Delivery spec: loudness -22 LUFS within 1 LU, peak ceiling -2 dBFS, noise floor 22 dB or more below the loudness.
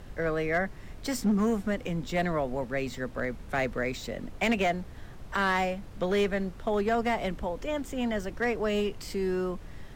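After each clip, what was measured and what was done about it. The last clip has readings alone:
clipped 0.9%; flat tops at -20.0 dBFS; noise floor -45 dBFS; noise floor target -52 dBFS; loudness -30.0 LUFS; peak -20.0 dBFS; loudness target -22.0 LUFS
-> clip repair -20 dBFS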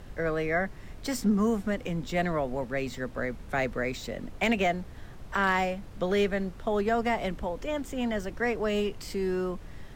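clipped 0.0%; noise floor -45 dBFS; noise floor target -52 dBFS
-> noise print and reduce 7 dB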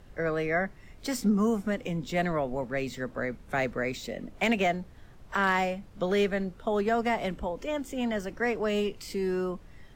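noise floor -51 dBFS; noise floor target -52 dBFS
-> noise print and reduce 6 dB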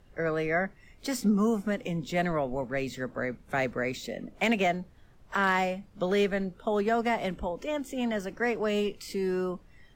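noise floor -57 dBFS; loudness -30.0 LUFS; peak -14.5 dBFS; loudness target -22.0 LUFS
-> gain +8 dB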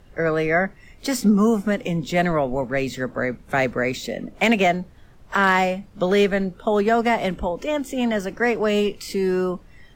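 loudness -22.0 LUFS; peak -6.5 dBFS; noise floor -49 dBFS

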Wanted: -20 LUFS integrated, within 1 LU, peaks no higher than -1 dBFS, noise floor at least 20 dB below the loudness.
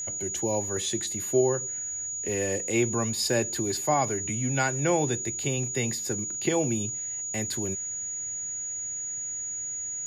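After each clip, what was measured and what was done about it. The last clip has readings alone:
steady tone 6800 Hz; tone level -31 dBFS; loudness -27.5 LUFS; peak -12.5 dBFS; loudness target -20.0 LUFS
-> notch 6800 Hz, Q 30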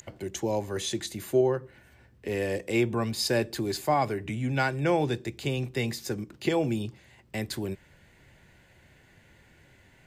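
steady tone none; loudness -29.5 LUFS; peak -13.5 dBFS; loudness target -20.0 LUFS
-> gain +9.5 dB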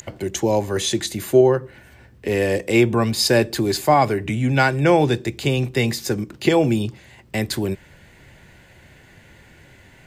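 loudness -20.0 LUFS; peak -4.0 dBFS; noise floor -50 dBFS

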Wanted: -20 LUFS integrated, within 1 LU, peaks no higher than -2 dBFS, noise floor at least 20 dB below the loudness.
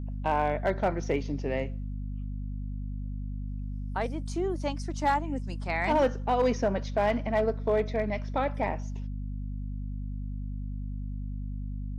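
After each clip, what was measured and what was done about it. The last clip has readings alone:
clipped 0.4%; flat tops at -18.0 dBFS; hum 50 Hz; harmonics up to 250 Hz; hum level -32 dBFS; loudness -31.0 LUFS; peak -18.0 dBFS; loudness target -20.0 LUFS
-> clip repair -18 dBFS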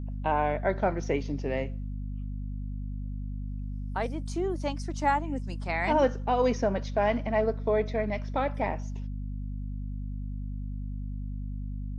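clipped 0.0%; hum 50 Hz; harmonics up to 250 Hz; hum level -32 dBFS
-> de-hum 50 Hz, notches 5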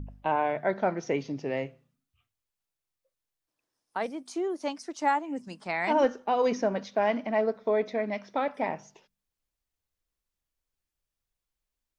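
hum none; loudness -29.5 LUFS; peak -13.5 dBFS; loudness target -20.0 LUFS
-> gain +9.5 dB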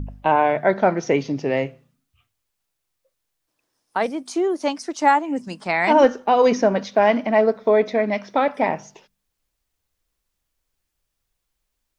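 loudness -20.0 LUFS; peak -4.0 dBFS; noise floor -78 dBFS

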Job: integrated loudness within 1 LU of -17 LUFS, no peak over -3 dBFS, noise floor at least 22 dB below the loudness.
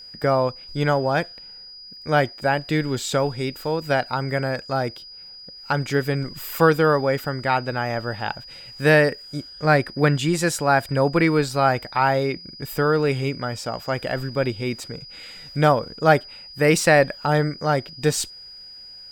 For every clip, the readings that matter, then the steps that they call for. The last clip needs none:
ticks 19/s; steady tone 4900 Hz; tone level -39 dBFS; loudness -22.0 LUFS; peak -3.5 dBFS; loudness target -17.0 LUFS
-> de-click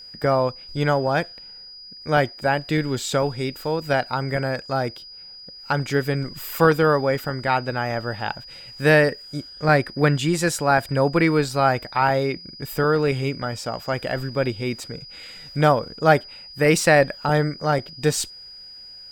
ticks 0.84/s; steady tone 4900 Hz; tone level -39 dBFS
-> notch 4900 Hz, Q 30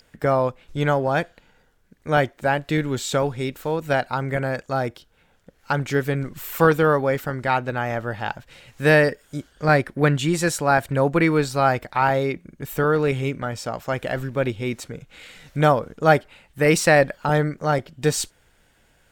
steady tone none; loudness -22.0 LUFS; peak -3.5 dBFS; loudness target -17.0 LUFS
-> gain +5 dB; limiter -3 dBFS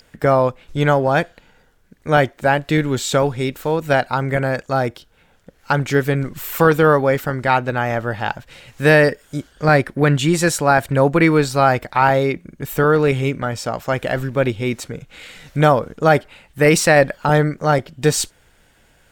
loudness -17.5 LUFS; peak -3.0 dBFS; noise floor -56 dBFS

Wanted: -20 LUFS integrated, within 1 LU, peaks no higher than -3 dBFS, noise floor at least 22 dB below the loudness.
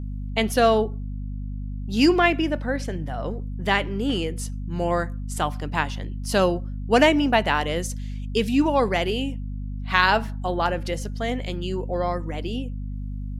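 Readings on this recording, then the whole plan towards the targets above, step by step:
hum 50 Hz; harmonics up to 250 Hz; hum level -28 dBFS; loudness -24.0 LUFS; peak -3.0 dBFS; loudness target -20.0 LUFS
-> de-hum 50 Hz, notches 5; gain +4 dB; limiter -3 dBFS

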